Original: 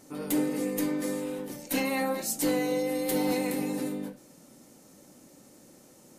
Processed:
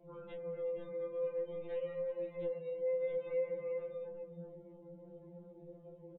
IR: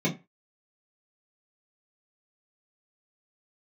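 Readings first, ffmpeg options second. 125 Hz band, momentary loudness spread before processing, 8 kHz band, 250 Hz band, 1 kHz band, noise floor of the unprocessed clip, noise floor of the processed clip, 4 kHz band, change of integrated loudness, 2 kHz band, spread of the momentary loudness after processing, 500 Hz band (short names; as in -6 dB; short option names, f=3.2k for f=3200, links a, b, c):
-12.0 dB, 7 LU, under -40 dB, -24.5 dB, -21.5 dB, -56 dBFS, -57 dBFS, under -25 dB, -10.0 dB, -20.0 dB, 18 LU, -4.0 dB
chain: -af "acompressor=threshold=-41dB:ratio=8,equalizer=f=530:w=3.3:g=7,aresample=8000,aresample=44100,aecho=1:1:360:0.473,alimiter=level_in=10dB:limit=-24dB:level=0:latency=1:release=121,volume=-10dB,bandreject=f=2.5k:w=30,afftdn=nr=21:nf=-58,flanger=delay=19:depth=8:speed=0.51,lowshelf=f=130:g=11,afftfilt=real='re*2.83*eq(mod(b,8),0)':imag='im*2.83*eq(mod(b,8),0)':win_size=2048:overlap=0.75,volume=3.5dB"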